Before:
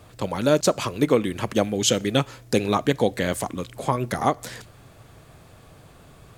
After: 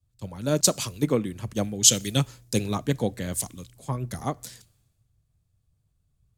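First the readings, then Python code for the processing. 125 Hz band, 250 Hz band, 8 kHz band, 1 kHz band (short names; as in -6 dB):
0.0 dB, -4.0 dB, +7.0 dB, -9.5 dB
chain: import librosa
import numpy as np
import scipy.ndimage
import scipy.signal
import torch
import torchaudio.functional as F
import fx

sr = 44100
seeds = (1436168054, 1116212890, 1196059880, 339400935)

y = fx.bass_treble(x, sr, bass_db=10, treble_db=10)
y = fx.band_widen(y, sr, depth_pct=100)
y = y * librosa.db_to_amplitude(-10.0)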